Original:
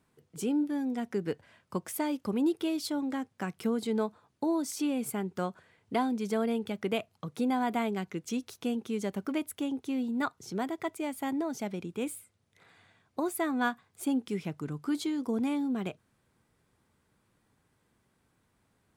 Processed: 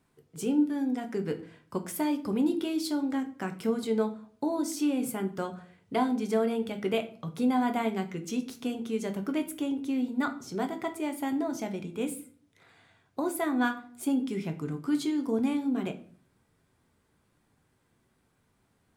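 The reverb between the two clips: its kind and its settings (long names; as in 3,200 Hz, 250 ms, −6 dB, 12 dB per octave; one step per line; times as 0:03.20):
rectangular room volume 44 cubic metres, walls mixed, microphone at 0.31 metres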